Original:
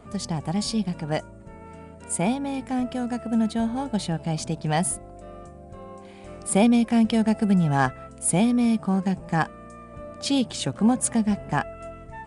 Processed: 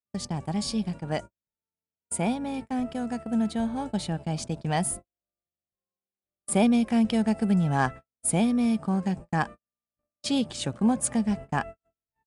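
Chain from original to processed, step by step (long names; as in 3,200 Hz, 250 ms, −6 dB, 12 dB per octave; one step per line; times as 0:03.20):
noise gate −32 dBFS, range −55 dB
level −3 dB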